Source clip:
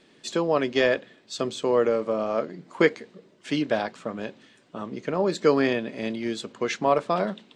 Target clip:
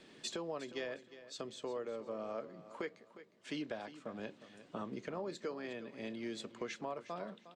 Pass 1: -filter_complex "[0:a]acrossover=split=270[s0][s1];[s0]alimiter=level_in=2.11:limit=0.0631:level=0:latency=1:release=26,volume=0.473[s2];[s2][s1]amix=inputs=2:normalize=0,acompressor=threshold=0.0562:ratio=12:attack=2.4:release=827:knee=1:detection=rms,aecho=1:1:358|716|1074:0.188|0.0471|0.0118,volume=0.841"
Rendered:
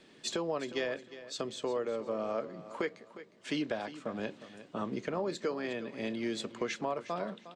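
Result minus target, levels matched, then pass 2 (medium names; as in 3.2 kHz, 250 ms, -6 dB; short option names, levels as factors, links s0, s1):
compression: peak gain reduction -7.5 dB
-filter_complex "[0:a]acrossover=split=270[s0][s1];[s0]alimiter=level_in=2.11:limit=0.0631:level=0:latency=1:release=26,volume=0.473[s2];[s2][s1]amix=inputs=2:normalize=0,acompressor=threshold=0.0224:ratio=12:attack=2.4:release=827:knee=1:detection=rms,aecho=1:1:358|716|1074:0.188|0.0471|0.0118,volume=0.841"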